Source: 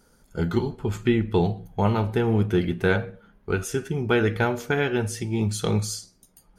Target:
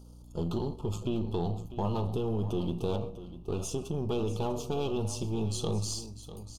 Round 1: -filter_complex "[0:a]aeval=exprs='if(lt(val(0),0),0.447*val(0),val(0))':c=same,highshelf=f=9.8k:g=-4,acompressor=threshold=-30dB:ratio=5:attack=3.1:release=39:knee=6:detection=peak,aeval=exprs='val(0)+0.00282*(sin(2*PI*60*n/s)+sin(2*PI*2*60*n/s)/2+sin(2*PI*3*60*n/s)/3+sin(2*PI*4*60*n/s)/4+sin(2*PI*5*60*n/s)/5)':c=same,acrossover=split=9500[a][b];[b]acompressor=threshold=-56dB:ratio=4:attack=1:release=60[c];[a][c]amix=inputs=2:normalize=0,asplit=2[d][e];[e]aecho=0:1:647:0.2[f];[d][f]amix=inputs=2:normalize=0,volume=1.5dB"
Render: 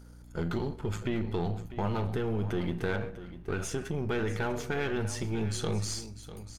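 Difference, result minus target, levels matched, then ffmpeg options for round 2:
2000 Hz band +15.5 dB
-filter_complex "[0:a]aeval=exprs='if(lt(val(0),0),0.447*val(0),val(0))':c=same,asuperstop=centerf=1800:order=8:qfactor=1.2,highshelf=f=9.8k:g=-4,acompressor=threshold=-30dB:ratio=5:attack=3.1:release=39:knee=6:detection=peak,aeval=exprs='val(0)+0.00282*(sin(2*PI*60*n/s)+sin(2*PI*2*60*n/s)/2+sin(2*PI*3*60*n/s)/3+sin(2*PI*4*60*n/s)/4+sin(2*PI*5*60*n/s)/5)':c=same,acrossover=split=9500[a][b];[b]acompressor=threshold=-56dB:ratio=4:attack=1:release=60[c];[a][c]amix=inputs=2:normalize=0,asplit=2[d][e];[e]aecho=0:1:647:0.2[f];[d][f]amix=inputs=2:normalize=0,volume=1.5dB"

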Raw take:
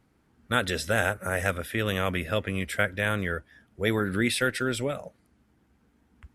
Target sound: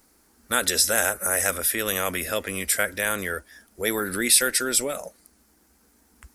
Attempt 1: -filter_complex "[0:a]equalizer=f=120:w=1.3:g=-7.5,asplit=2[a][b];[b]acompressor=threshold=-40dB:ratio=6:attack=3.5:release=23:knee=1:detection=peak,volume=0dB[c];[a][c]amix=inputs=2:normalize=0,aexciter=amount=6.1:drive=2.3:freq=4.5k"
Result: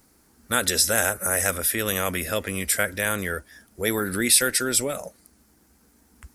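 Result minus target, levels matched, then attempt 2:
125 Hz band +6.0 dB
-filter_complex "[0:a]equalizer=f=120:w=1.3:g=-18,asplit=2[a][b];[b]acompressor=threshold=-40dB:ratio=6:attack=3.5:release=23:knee=1:detection=peak,volume=0dB[c];[a][c]amix=inputs=2:normalize=0,aexciter=amount=6.1:drive=2.3:freq=4.5k"

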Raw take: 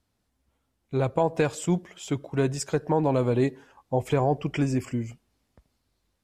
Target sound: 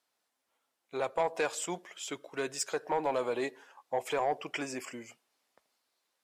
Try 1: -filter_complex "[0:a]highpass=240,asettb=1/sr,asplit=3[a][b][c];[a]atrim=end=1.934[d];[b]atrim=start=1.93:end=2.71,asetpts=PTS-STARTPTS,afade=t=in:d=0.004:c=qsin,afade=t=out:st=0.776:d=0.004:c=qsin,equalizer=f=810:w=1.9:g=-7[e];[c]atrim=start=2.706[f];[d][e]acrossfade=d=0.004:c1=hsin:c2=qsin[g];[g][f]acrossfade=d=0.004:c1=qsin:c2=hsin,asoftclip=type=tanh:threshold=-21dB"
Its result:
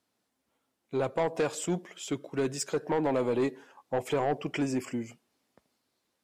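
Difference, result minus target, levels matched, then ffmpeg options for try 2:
250 Hz band +7.0 dB
-filter_complex "[0:a]highpass=610,asettb=1/sr,asplit=3[a][b][c];[a]atrim=end=1.934[d];[b]atrim=start=1.93:end=2.71,asetpts=PTS-STARTPTS,afade=t=in:d=0.004:c=qsin,afade=t=out:st=0.776:d=0.004:c=qsin,equalizer=f=810:w=1.9:g=-7[e];[c]atrim=start=2.706[f];[d][e]acrossfade=d=0.004:c1=hsin:c2=qsin[g];[g][f]acrossfade=d=0.004:c1=qsin:c2=hsin,asoftclip=type=tanh:threshold=-21dB"

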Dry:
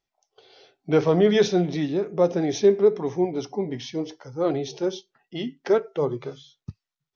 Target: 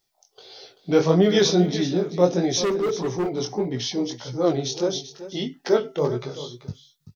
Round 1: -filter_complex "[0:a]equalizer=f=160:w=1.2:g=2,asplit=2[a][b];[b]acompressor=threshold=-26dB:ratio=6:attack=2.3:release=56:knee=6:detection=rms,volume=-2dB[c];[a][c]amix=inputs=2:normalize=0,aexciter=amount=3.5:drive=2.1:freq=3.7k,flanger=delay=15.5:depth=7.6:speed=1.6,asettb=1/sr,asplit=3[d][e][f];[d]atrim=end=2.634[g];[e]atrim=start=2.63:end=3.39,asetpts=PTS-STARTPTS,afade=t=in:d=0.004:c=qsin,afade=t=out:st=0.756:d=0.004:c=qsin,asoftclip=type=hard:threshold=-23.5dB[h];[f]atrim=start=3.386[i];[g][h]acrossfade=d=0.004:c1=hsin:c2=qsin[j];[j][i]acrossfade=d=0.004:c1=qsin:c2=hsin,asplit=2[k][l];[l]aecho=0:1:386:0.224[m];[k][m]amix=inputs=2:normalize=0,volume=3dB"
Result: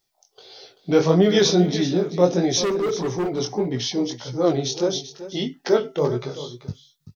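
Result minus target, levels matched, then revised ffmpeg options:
compressor: peak gain reduction -9.5 dB
-filter_complex "[0:a]equalizer=f=160:w=1.2:g=2,asplit=2[a][b];[b]acompressor=threshold=-37.5dB:ratio=6:attack=2.3:release=56:knee=6:detection=rms,volume=-2dB[c];[a][c]amix=inputs=2:normalize=0,aexciter=amount=3.5:drive=2.1:freq=3.7k,flanger=delay=15.5:depth=7.6:speed=1.6,asettb=1/sr,asplit=3[d][e][f];[d]atrim=end=2.634[g];[e]atrim=start=2.63:end=3.39,asetpts=PTS-STARTPTS,afade=t=in:d=0.004:c=qsin,afade=t=out:st=0.756:d=0.004:c=qsin,asoftclip=type=hard:threshold=-23.5dB[h];[f]atrim=start=3.386[i];[g][h]acrossfade=d=0.004:c1=hsin:c2=qsin[j];[j][i]acrossfade=d=0.004:c1=qsin:c2=hsin,asplit=2[k][l];[l]aecho=0:1:386:0.224[m];[k][m]amix=inputs=2:normalize=0,volume=3dB"

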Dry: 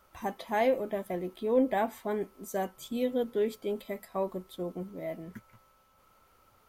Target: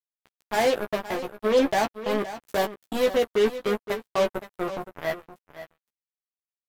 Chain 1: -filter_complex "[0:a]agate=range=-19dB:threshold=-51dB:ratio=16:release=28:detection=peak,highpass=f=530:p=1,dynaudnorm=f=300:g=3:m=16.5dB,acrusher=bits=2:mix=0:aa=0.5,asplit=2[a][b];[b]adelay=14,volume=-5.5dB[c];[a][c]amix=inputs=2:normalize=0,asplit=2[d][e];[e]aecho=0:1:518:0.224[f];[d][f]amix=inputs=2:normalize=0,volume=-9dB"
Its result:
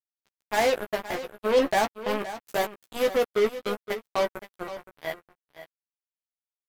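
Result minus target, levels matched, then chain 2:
250 Hz band -3.5 dB
-filter_complex "[0:a]agate=range=-19dB:threshold=-51dB:ratio=16:release=28:detection=peak,highpass=f=200:p=1,dynaudnorm=f=300:g=3:m=16.5dB,acrusher=bits=2:mix=0:aa=0.5,asplit=2[a][b];[b]adelay=14,volume=-5.5dB[c];[a][c]amix=inputs=2:normalize=0,asplit=2[d][e];[e]aecho=0:1:518:0.224[f];[d][f]amix=inputs=2:normalize=0,volume=-9dB"

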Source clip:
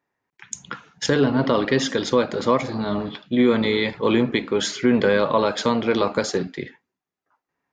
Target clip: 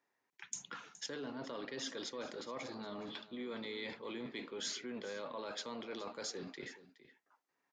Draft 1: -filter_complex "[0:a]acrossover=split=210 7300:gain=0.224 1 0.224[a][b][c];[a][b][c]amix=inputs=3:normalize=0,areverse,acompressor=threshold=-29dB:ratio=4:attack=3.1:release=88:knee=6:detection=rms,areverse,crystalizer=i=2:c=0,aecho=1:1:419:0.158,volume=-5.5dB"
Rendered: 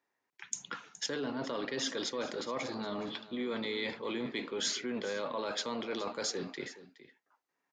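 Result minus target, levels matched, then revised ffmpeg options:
compressor: peak gain reduction -7.5 dB
-filter_complex "[0:a]acrossover=split=210 7300:gain=0.224 1 0.224[a][b][c];[a][b][c]amix=inputs=3:normalize=0,areverse,acompressor=threshold=-39dB:ratio=4:attack=3.1:release=88:knee=6:detection=rms,areverse,crystalizer=i=2:c=0,aecho=1:1:419:0.158,volume=-5.5dB"

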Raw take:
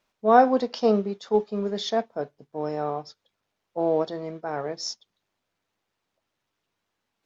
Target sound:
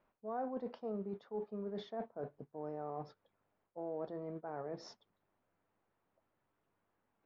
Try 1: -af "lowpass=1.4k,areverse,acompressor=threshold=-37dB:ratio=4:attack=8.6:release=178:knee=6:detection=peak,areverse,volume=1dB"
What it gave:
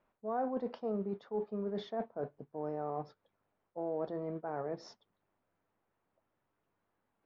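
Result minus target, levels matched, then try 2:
compressor: peak gain reduction -5 dB
-af "lowpass=1.4k,areverse,acompressor=threshold=-43.5dB:ratio=4:attack=8.6:release=178:knee=6:detection=peak,areverse,volume=1dB"

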